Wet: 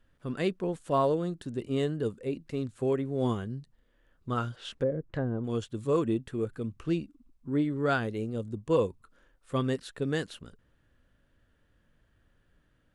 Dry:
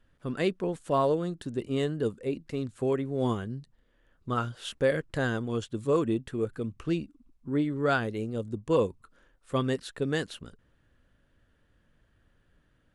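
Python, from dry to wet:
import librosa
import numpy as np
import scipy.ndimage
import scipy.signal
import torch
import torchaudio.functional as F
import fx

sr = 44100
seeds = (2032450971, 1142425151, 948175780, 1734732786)

y = fx.hpss(x, sr, part='percussive', gain_db=-3)
y = fx.env_lowpass_down(y, sr, base_hz=460.0, full_db=-24.5, at=(4.55, 5.43), fade=0.02)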